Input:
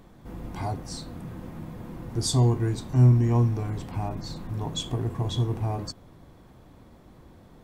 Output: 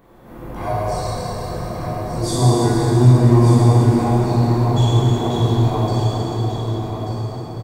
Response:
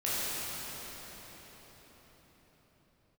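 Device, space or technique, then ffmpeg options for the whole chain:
cathedral: -filter_complex "[0:a]equalizer=frequency=5500:width_type=o:width=2.5:gain=-11,asettb=1/sr,asplit=3[link_01][link_02][link_03];[link_01]atrim=end=0.614[link_04];[link_02]atrim=start=0.61:end=1.53,asetpts=PTS-STARTPTS,afade=type=in:duration=0.004:curve=qsin,afade=type=out:start_time=0.916:duration=0.004:curve=qsin,aecho=1:1:1.8:0.92,atrim=end_sample=40572[link_05];[link_03]atrim=start=1.526[link_06];[link_04][link_05]acrossfade=duration=0.004:curve1=hsin:curve2=qsin[link_07];[link_07][link_06]acrossfade=duration=0.004:curve1=qsin:curve2=hsin,lowshelf=frequency=300:gain=-12,aecho=1:1:1185:0.422[link_08];[1:a]atrim=start_sample=2205[link_09];[link_08][link_09]afir=irnorm=-1:irlink=0,volume=6.5dB"

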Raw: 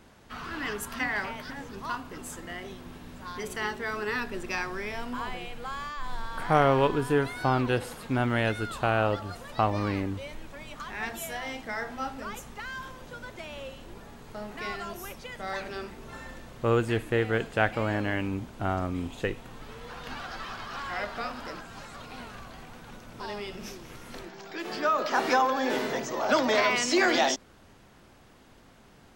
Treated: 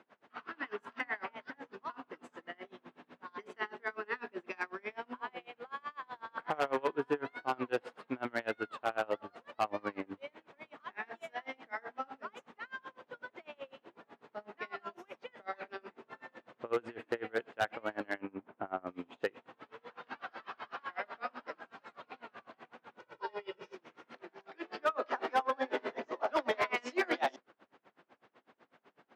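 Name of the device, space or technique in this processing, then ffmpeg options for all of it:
helicopter radio: -filter_complex "[0:a]highpass=330,lowpass=2500,aeval=exprs='val(0)*pow(10,-30*(0.5-0.5*cos(2*PI*8*n/s))/20)':channel_layout=same,asoftclip=type=hard:threshold=-23.5dB,asettb=1/sr,asplit=3[link_01][link_02][link_03];[link_01]atrim=end=18.184[link_04];[link_02]atrim=start=18.18:end=18.87,asetpts=PTS-STARTPTS,afade=type=in:duration=0.004:curve=qsin,afade=type=out:start_time=0.686:duration=0.004:curve=qsin,lowpass=2100[link_05];[link_03]atrim=start=18.866[link_06];[link_04][link_05]acrossfade=duration=0.004:curve1=hsin:curve2=qsin[link_07];[link_07][link_06]acrossfade=duration=0.004:curve1=qsin:curve2=hsin,highpass=79,asettb=1/sr,asplit=3[link_08][link_09][link_10];[link_08]atrim=end=22.994[link_11];[link_09]atrim=start=22.99:end=23.75,asetpts=PTS-STARTPTS,afade=type=in:duration=0.004:curve=qsin,afade=type=out:start_time=0.756:duration=0.004:curve=qsin,aecho=1:1:2.1:0.84,atrim=end_sample=33516[link_12];[link_10]atrim=start=23.746[link_13];[link_11][link_12]acrossfade=duration=0.004:curve1=hsin:curve2=qsin[link_14];[link_14][link_13]acrossfade=duration=0.004:curve1=qsin:curve2=hsin"

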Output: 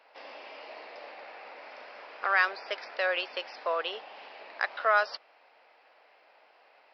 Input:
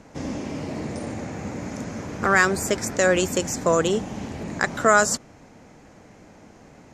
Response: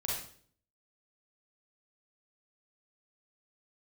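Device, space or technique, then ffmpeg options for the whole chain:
musical greeting card: -af "aresample=11025,aresample=44100,highpass=frequency=590:width=0.5412,highpass=frequency=590:width=1.3066,equalizer=frequency=2700:width_type=o:width=0.37:gain=6,volume=-6.5dB"

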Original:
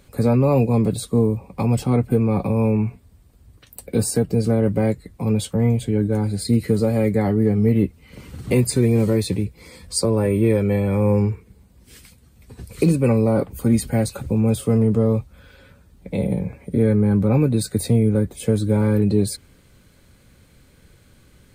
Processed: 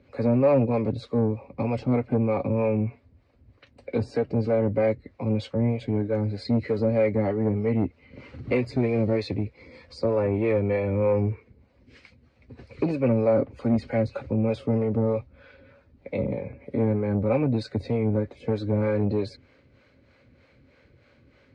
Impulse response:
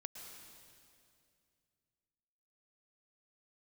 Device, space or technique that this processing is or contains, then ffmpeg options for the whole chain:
guitar amplifier with harmonic tremolo: -filter_complex "[0:a]acrossover=split=410[link_01][link_02];[link_01]aeval=exprs='val(0)*(1-0.7/2+0.7/2*cos(2*PI*3.2*n/s))':channel_layout=same[link_03];[link_02]aeval=exprs='val(0)*(1-0.7/2-0.7/2*cos(2*PI*3.2*n/s))':channel_layout=same[link_04];[link_03][link_04]amix=inputs=2:normalize=0,asoftclip=type=tanh:threshold=-15.5dB,highpass=76,equalizer=frequency=180:width_type=q:width=4:gain=-9,equalizer=frequency=260:width_type=q:width=4:gain=5,equalizer=frequency=560:width_type=q:width=4:gain=7,equalizer=frequency=2200:width_type=q:width=4:gain=5,equalizer=frequency=3400:width_type=q:width=4:gain=-7,lowpass=frequency=4300:width=0.5412,lowpass=frequency=4300:width=1.3066,volume=-1dB"

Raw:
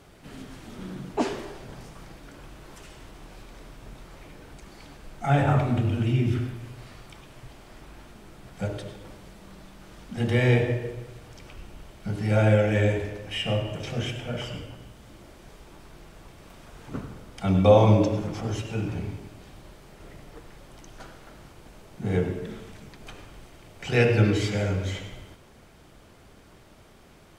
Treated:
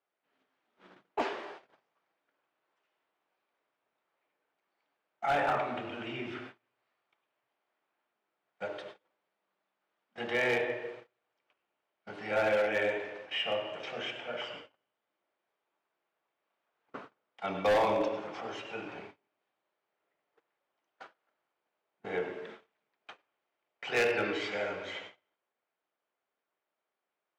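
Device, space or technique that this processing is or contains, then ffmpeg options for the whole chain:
walkie-talkie: -af "highpass=590,lowpass=2900,asoftclip=type=hard:threshold=-23dB,agate=range=-29dB:threshold=-46dB:ratio=16:detection=peak"

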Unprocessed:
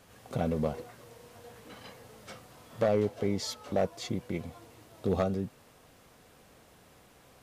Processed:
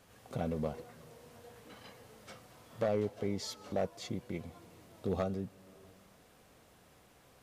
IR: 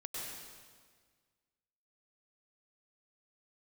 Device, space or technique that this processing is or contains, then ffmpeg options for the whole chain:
ducked reverb: -filter_complex "[0:a]asplit=3[link_01][link_02][link_03];[1:a]atrim=start_sample=2205[link_04];[link_02][link_04]afir=irnorm=-1:irlink=0[link_05];[link_03]apad=whole_len=327335[link_06];[link_05][link_06]sidechaincompress=threshold=-46dB:ratio=8:attack=16:release=321,volume=-11dB[link_07];[link_01][link_07]amix=inputs=2:normalize=0,volume=-5.5dB"

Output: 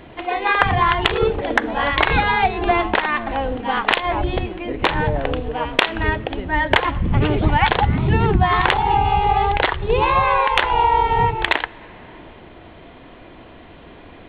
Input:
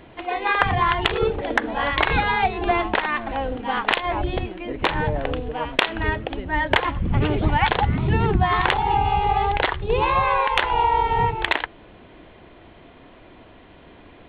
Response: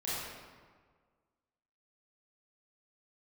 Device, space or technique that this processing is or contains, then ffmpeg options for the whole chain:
ducked reverb: -filter_complex "[0:a]asplit=3[link_01][link_02][link_03];[1:a]atrim=start_sample=2205[link_04];[link_02][link_04]afir=irnorm=-1:irlink=0[link_05];[link_03]apad=whole_len=629763[link_06];[link_05][link_06]sidechaincompress=threshold=-34dB:ratio=8:attack=12:release=390,volume=-10.5dB[link_07];[link_01][link_07]amix=inputs=2:normalize=0,volume=3dB"

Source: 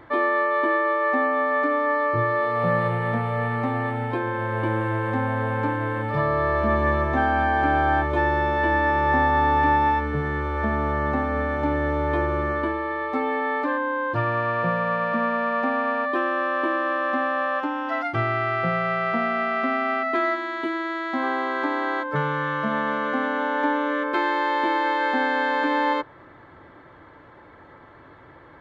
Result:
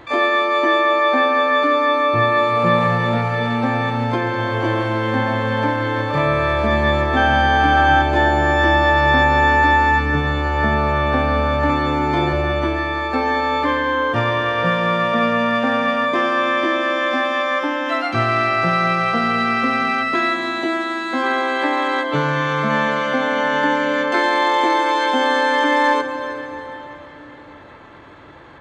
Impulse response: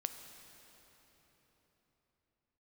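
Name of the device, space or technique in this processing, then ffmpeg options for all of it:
shimmer-style reverb: -filter_complex "[0:a]asplit=2[link_01][link_02];[link_02]asetrate=88200,aresample=44100,atempo=0.5,volume=-9dB[link_03];[link_01][link_03]amix=inputs=2:normalize=0[link_04];[1:a]atrim=start_sample=2205[link_05];[link_04][link_05]afir=irnorm=-1:irlink=0,asettb=1/sr,asplit=3[link_06][link_07][link_08];[link_06]atrim=end=11.664[link_09];[link_07]atrim=start=11.66:end=12.33,asetpts=PTS-STARTPTS,afade=type=in:duration=0.004:curve=qsin,afade=type=out:start_time=0.666:duration=0.004:curve=qsin,asplit=2[link_10][link_11];[link_11]adelay=35,volume=-3dB[link_12];[link_10][link_12]amix=inputs=2:normalize=0,atrim=end_sample=29547[link_13];[link_08]atrim=start=12.326[link_14];[link_09][link_13]acrossfade=duration=0.004:curve1=hsin:curve2=qsin[link_15];[link_15][link_14]acrossfade=duration=0.004:curve1=qsin:curve2=hsin,volume=5.5dB"

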